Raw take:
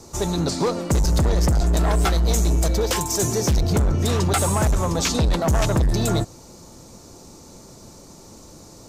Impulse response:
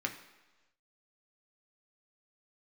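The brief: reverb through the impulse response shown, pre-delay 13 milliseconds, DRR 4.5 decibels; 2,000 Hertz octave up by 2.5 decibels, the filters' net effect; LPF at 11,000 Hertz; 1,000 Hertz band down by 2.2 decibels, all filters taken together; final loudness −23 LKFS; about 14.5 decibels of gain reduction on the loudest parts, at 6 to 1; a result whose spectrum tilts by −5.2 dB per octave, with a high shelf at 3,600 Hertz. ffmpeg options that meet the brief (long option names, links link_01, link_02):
-filter_complex "[0:a]lowpass=11000,equalizer=frequency=1000:width_type=o:gain=-4,equalizer=frequency=2000:width_type=o:gain=6,highshelf=frequency=3600:gain=-5.5,acompressor=threshold=-33dB:ratio=6,asplit=2[link_01][link_02];[1:a]atrim=start_sample=2205,adelay=13[link_03];[link_02][link_03]afir=irnorm=-1:irlink=0,volume=-8.5dB[link_04];[link_01][link_04]amix=inputs=2:normalize=0,volume=12.5dB"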